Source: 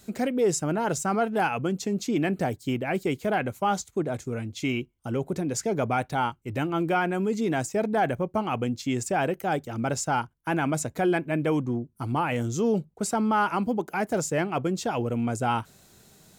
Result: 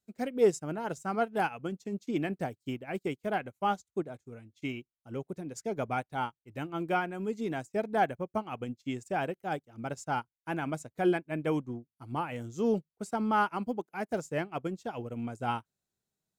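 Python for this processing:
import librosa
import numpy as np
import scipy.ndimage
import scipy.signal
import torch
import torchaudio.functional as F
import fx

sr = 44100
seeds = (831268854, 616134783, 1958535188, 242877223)

y = fx.upward_expand(x, sr, threshold_db=-42.0, expansion=2.5)
y = y * librosa.db_to_amplitude(1.0)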